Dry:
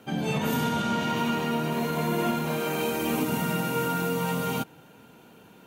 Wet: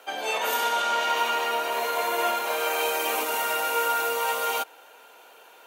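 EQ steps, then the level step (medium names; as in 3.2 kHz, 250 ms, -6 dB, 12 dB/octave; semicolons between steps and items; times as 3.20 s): high-pass 520 Hz 24 dB/octave; +5.5 dB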